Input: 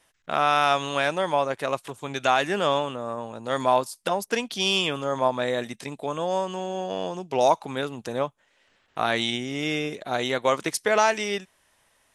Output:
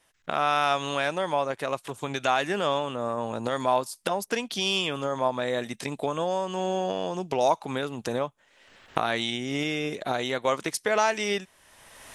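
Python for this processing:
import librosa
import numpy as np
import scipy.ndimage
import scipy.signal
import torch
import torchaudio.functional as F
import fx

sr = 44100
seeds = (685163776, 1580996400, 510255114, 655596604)

y = fx.recorder_agc(x, sr, target_db=-14.5, rise_db_per_s=25.0, max_gain_db=30)
y = y * librosa.db_to_amplitude(-3.0)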